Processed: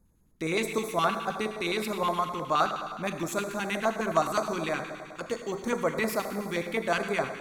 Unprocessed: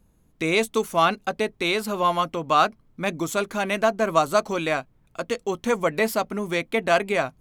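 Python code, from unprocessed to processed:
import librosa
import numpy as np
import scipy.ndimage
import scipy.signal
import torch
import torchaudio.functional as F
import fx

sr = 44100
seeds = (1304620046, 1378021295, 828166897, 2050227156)

y = fx.rev_schroeder(x, sr, rt60_s=1.9, comb_ms=29, drr_db=5.0)
y = fx.filter_lfo_notch(y, sr, shape='square', hz=9.6, low_hz=620.0, high_hz=2900.0, q=0.96)
y = y * 10.0 ** (-5.0 / 20.0)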